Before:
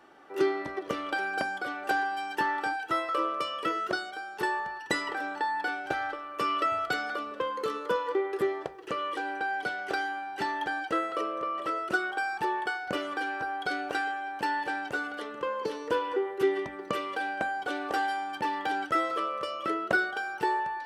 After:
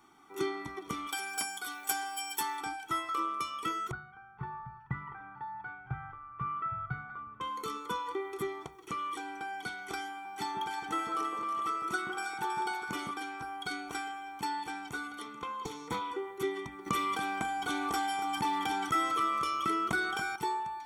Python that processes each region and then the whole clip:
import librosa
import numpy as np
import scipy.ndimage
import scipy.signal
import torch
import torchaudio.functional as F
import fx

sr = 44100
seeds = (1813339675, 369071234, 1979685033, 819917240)

y = fx.chain(x, sr, fx.riaa(side='recording'),
    fx.notch_comb(f0_hz=170.0), at=(1.07, 2.61))
y = fx.chain(y, sr, fx.ladder_lowpass(hz=1900.0, resonance_pct=35),
    fx.low_shelf_res(hz=200.0, db=13.5, q=3.0),
    fx.hum_notches(base_hz=50, count=10), at=(3.91, 7.41))
y = fx.chain(y, sr, fx.low_shelf(hz=140.0, db=-7.0),
    fx.echo_alternate(ms=160, hz=1400.0, feedback_pct=65, wet_db=-3.0), at=(10.09, 13.11))
y = fx.chain(y, sr, fx.highpass(hz=120.0, slope=24),
    fx.doppler_dist(depth_ms=0.35), at=(15.26, 16.11))
y = fx.chain(y, sr, fx.echo_single(ms=283, db=-12.0),
    fx.env_flatten(amount_pct=50), at=(16.86, 20.36))
y = fx.bass_treble(y, sr, bass_db=4, treble_db=11)
y = fx.notch(y, sr, hz=4800.0, q=5.0)
y = y + 0.89 * np.pad(y, (int(0.9 * sr / 1000.0), 0))[:len(y)]
y = y * librosa.db_to_amplitude(-8.0)